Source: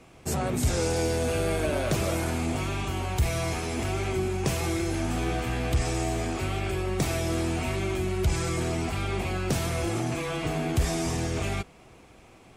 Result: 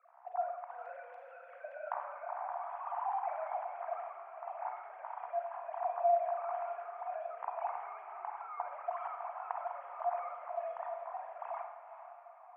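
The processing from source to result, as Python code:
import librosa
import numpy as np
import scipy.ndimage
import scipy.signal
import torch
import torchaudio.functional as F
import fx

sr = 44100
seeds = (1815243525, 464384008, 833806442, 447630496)

y = fx.sine_speech(x, sr)
y = scipy.signal.sosfilt(scipy.signal.butter(4, 1000.0, 'lowpass', fs=sr, output='sos'), y)
y = fx.tremolo_random(y, sr, seeds[0], hz=3.5, depth_pct=55)
y = scipy.signal.sosfilt(scipy.signal.cheby1(6, 3, 690.0, 'highpass', fs=sr, output='sos'), y)
y = fx.echo_diffused(y, sr, ms=461, feedback_pct=43, wet_db=-10.0)
y = fx.rev_schroeder(y, sr, rt60_s=1.1, comb_ms=32, drr_db=3.5)
y = F.gain(torch.from_numpy(y), 3.5).numpy()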